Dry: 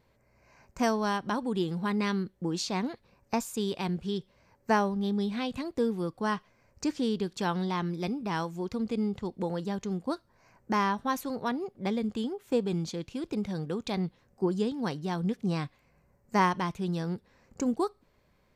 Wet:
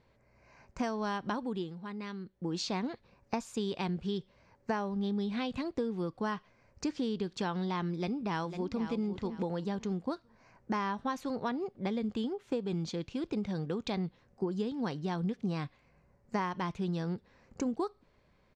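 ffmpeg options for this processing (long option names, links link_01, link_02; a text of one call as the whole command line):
ffmpeg -i in.wav -filter_complex "[0:a]asplit=2[link_01][link_02];[link_02]afade=type=in:start_time=7.95:duration=0.01,afade=type=out:start_time=8.92:duration=0.01,aecho=0:1:500|1000|1500:0.298538|0.0746346|0.0186586[link_03];[link_01][link_03]amix=inputs=2:normalize=0,asplit=3[link_04][link_05][link_06];[link_04]atrim=end=1.74,asetpts=PTS-STARTPTS,afade=type=out:start_time=1.27:duration=0.47:silence=0.251189[link_07];[link_05]atrim=start=1.74:end=2.19,asetpts=PTS-STARTPTS,volume=-12dB[link_08];[link_06]atrim=start=2.19,asetpts=PTS-STARTPTS,afade=type=in:duration=0.47:silence=0.251189[link_09];[link_07][link_08][link_09]concat=n=3:v=0:a=1,lowpass=5600,acompressor=threshold=-29dB:ratio=10" out.wav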